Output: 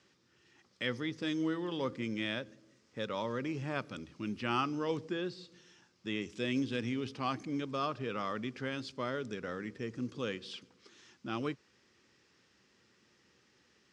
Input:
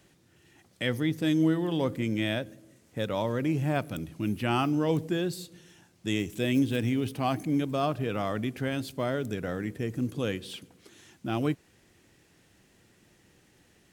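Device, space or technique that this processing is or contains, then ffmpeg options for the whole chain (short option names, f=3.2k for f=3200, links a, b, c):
car door speaker: -filter_complex "[0:a]asettb=1/sr,asplit=3[a][b][c];[a]atrim=end=5.054[d];[b]atrim=start=5.05:end=6.22,asetpts=PTS-STARTPTS,afade=t=in:d=0.004:c=qsin,afade=t=out:st=1.166:d=0.004:c=qsin,acrossover=split=3900[e][f];[f]acompressor=threshold=-54dB:ratio=4:attack=1:release=60[g];[e][g]amix=inputs=2:normalize=0[h];[c]atrim=start=6.216[i];[d][h]acrossfade=d=0.004:c1=hsin:c2=qsin[j];[j][i]acrossfade=d=0.004:c1=qsin:c2=hsin,highpass=100,equalizer=f=100:t=q:w=4:g=-9,equalizer=f=160:t=q:w=4:g=-9,equalizer=f=300:t=q:w=4:g=-5,equalizer=f=690:t=q:w=4:g=-9,equalizer=f=1.2k:t=q:w=4:g=5,equalizer=f=5.1k:t=q:w=4:g=6,lowpass=f=6.5k:w=0.5412,lowpass=f=6.5k:w=1.3066,volume=-4.5dB"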